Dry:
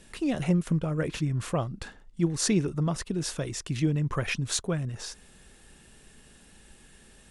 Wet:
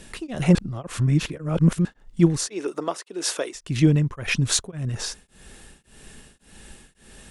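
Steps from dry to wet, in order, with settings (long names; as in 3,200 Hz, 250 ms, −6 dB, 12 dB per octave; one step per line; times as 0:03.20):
0:00.55–0:01.85: reverse
0:02.47–0:03.55: high-pass filter 340 Hz 24 dB per octave
tremolo along a rectified sine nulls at 1.8 Hz
level +9 dB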